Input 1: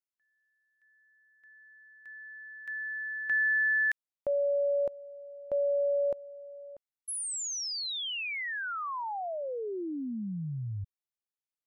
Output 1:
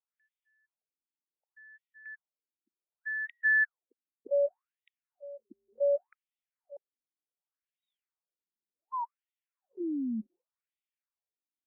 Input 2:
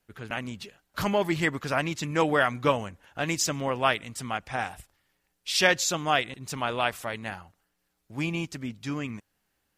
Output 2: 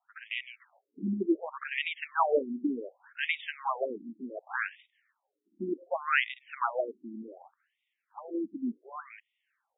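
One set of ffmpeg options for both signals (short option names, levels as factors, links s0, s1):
-af "afftfilt=real='re*between(b*sr/1024,250*pow(2700/250,0.5+0.5*sin(2*PI*0.67*pts/sr))/1.41,250*pow(2700/250,0.5+0.5*sin(2*PI*0.67*pts/sr))*1.41)':imag='im*between(b*sr/1024,250*pow(2700/250,0.5+0.5*sin(2*PI*0.67*pts/sr))/1.41,250*pow(2700/250,0.5+0.5*sin(2*PI*0.67*pts/sr))*1.41)':win_size=1024:overlap=0.75,volume=1.41"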